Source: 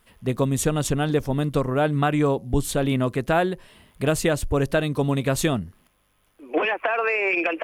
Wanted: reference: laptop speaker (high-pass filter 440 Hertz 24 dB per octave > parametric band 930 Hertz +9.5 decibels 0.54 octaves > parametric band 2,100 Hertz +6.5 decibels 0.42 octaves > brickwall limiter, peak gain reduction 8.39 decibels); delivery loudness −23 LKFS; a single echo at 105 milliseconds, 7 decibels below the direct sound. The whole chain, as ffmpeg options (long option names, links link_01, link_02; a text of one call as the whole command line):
ffmpeg -i in.wav -af "highpass=frequency=440:width=0.5412,highpass=frequency=440:width=1.3066,equalizer=frequency=930:width_type=o:width=0.54:gain=9.5,equalizer=frequency=2100:width_type=o:width=0.42:gain=6.5,aecho=1:1:105:0.447,volume=2dB,alimiter=limit=-11.5dB:level=0:latency=1" out.wav